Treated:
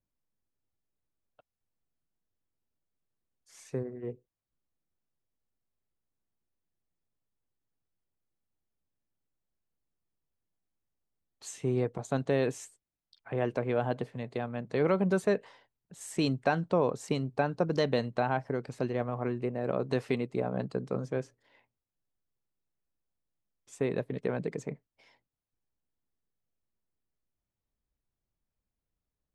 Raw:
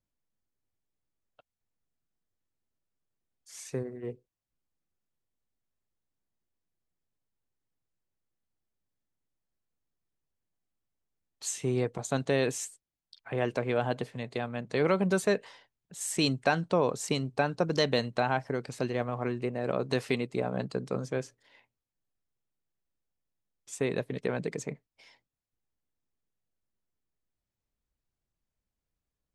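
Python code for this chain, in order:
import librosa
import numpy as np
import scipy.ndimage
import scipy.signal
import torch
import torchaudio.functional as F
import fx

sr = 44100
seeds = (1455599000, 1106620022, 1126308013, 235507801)

y = fx.high_shelf(x, sr, hz=2200.0, db=-10.0)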